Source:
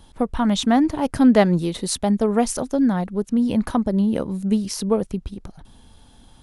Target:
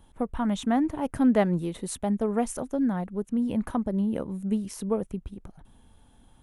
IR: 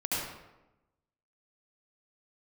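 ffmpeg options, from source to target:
-af "equalizer=frequency=4700:width_type=o:width=0.84:gain=-11.5,volume=-7dB"

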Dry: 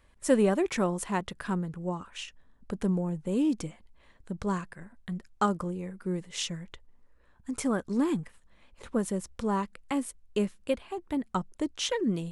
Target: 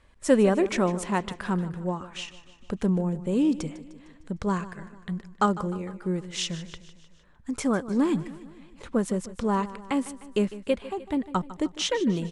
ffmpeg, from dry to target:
ffmpeg -i in.wav -af "lowpass=8200,aecho=1:1:152|304|456|608|760:0.158|0.0888|0.0497|0.0278|0.0156,volume=3.5dB" out.wav

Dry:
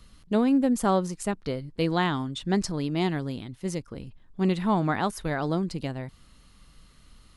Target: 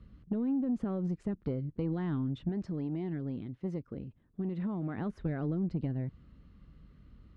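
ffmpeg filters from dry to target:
ffmpeg -i in.wav -filter_complex "[0:a]highpass=49,alimiter=limit=-20dB:level=0:latency=1:release=70,lowpass=1100,acompressor=threshold=-28dB:ratio=10,equalizer=frequency=860:width_type=o:width=1.6:gain=-13.5,asoftclip=type=tanh:threshold=-26.5dB,asettb=1/sr,asplit=3[link_01][link_02][link_03];[link_01]atrim=end=2.494[link_04];[link_02]atrim=start=2.49:end=4.98,asetpts=PTS-STARTPTS,afade=type=in:duration=0.004:curve=qsin,afade=type=out:start_time=2.486:duration=0.004:curve=qsin,lowshelf=frequency=150:gain=-9.5[link_05];[link_03]atrim=start=4.976[link_06];[link_04][link_05]acrossfade=duration=0.004:curve1=hsin:curve2=qsin[link_07];[link_07][link_06]acrossfade=duration=0.004:curve1=qsin:curve2=hsin,volume=4dB" out.wav

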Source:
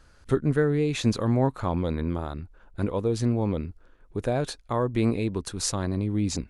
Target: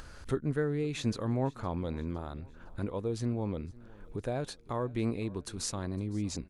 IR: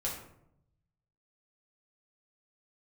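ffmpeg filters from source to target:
-af "acompressor=mode=upward:threshold=-26dB:ratio=2.5,aecho=1:1:510|1020|1530:0.075|0.0382|0.0195,volume=-8dB"

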